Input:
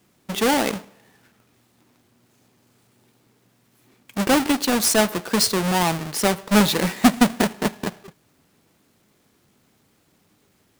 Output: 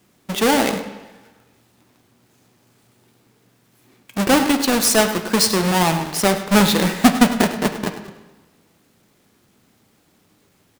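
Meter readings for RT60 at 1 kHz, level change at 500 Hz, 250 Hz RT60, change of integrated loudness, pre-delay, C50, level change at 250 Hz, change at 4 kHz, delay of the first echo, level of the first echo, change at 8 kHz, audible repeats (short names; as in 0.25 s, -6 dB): 1.2 s, +3.0 dB, 1.1 s, +3.0 dB, 7 ms, 9.0 dB, +3.0 dB, +3.0 dB, 0.102 s, -13.5 dB, +3.0 dB, 1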